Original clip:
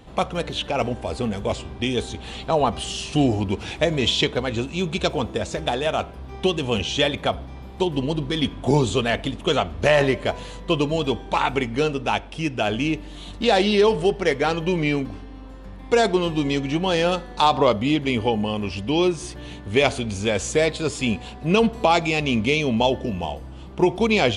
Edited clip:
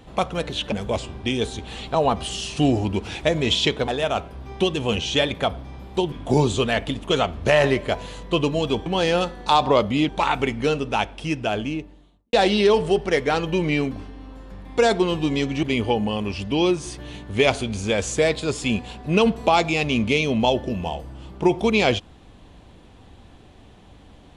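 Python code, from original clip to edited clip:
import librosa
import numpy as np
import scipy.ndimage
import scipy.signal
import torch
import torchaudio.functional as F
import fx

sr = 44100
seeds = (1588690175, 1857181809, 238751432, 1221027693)

y = fx.studio_fade_out(x, sr, start_s=12.43, length_s=1.04)
y = fx.edit(y, sr, fx.cut(start_s=0.72, length_s=0.56),
    fx.cut(start_s=4.44, length_s=1.27),
    fx.cut(start_s=7.95, length_s=0.54),
    fx.move(start_s=16.77, length_s=1.23, to_s=11.23), tone=tone)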